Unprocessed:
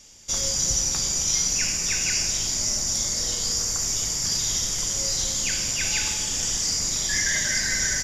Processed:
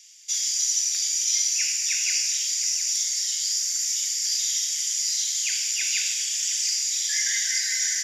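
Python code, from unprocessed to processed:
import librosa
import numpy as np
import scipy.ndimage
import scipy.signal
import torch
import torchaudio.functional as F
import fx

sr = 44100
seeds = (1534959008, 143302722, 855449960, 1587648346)

y = scipy.signal.sosfilt(scipy.signal.butter(6, 1900.0, 'highpass', fs=sr, output='sos'), x)
y = y + 10.0 ** (-13.0 / 20.0) * np.pad(y, (int(712 * sr / 1000.0), 0))[:len(y)]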